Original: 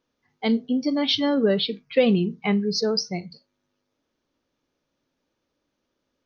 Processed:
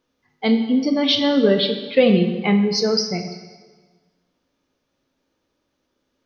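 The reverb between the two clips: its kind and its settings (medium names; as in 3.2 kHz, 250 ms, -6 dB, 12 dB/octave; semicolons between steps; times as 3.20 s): plate-style reverb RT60 1.4 s, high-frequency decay 0.9×, DRR 5.5 dB; trim +3.5 dB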